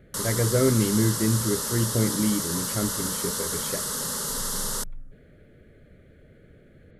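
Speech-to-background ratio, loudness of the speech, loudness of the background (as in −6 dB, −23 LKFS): 1.0 dB, −26.5 LKFS, −27.5 LKFS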